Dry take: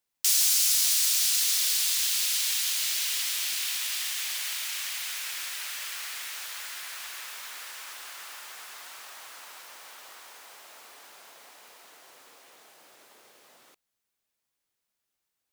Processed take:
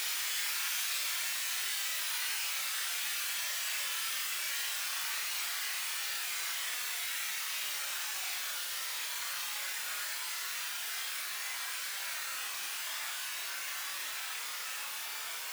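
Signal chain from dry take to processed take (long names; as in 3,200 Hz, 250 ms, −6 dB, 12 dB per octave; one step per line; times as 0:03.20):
extreme stretch with random phases 7.5×, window 0.05 s, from 0:05.32
flutter between parallel walls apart 4.9 metres, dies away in 0.21 s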